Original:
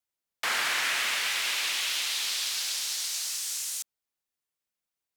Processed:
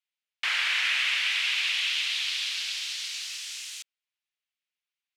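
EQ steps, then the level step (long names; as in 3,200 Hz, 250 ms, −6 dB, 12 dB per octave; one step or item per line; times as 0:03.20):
resonant band-pass 2,700 Hz, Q 1.8
+5.5 dB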